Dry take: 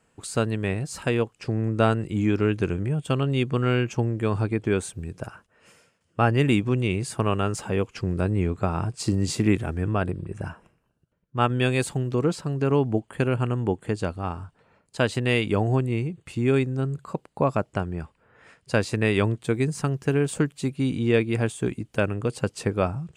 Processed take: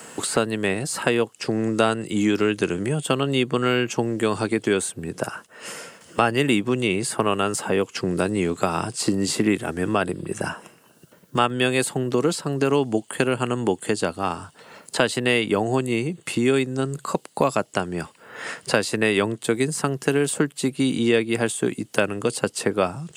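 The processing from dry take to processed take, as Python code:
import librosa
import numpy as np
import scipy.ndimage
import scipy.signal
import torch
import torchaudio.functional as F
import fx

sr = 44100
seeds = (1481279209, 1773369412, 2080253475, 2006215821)

y = scipy.signal.sosfilt(scipy.signal.butter(2, 210.0, 'highpass', fs=sr, output='sos'), x)
y = fx.high_shelf(y, sr, hz=3900.0, db=10.0)
y = fx.notch(y, sr, hz=2400.0, q=13.0)
y = fx.dynamic_eq(y, sr, hz=6200.0, q=2.4, threshold_db=-47.0, ratio=4.0, max_db=-4)
y = fx.band_squash(y, sr, depth_pct=70)
y = y * librosa.db_to_amplitude(3.5)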